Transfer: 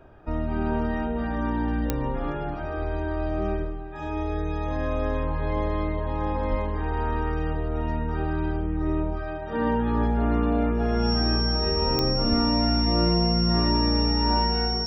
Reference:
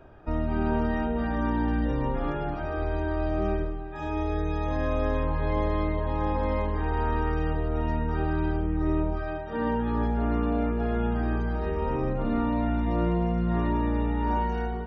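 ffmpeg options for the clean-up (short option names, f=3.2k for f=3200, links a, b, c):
-filter_complex "[0:a]adeclick=t=4,bandreject=f=5.5k:w=30,asplit=3[a][b][c];[a]afade=t=out:st=6.5:d=0.02[d];[b]highpass=f=140:w=0.5412,highpass=f=140:w=1.3066,afade=t=in:st=6.5:d=0.02,afade=t=out:st=6.62:d=0.02[e];[c]afade=t=in:st=6.62:d=0.02[f];[d][e][f]amix=inputs=3:normalize=0,asplit=3[g][h][i];[g]afade=t=out:st=12.29:d=0.02[j];[h]highpass=f=140:w=0.5412,highpass=f=140:w=1.3066,afade=t=in:st=12.29:d=0.02,afade=t=out:st=12.41:d=0.02[k];[i]afade=t=in:st=12.41:d=0.02[l];[j][k][l]amix=inputs=3:normalize=0,asetnsamples=n=441:p=0,asendcmd='9.42 volume volume -3dB',volume=0dB"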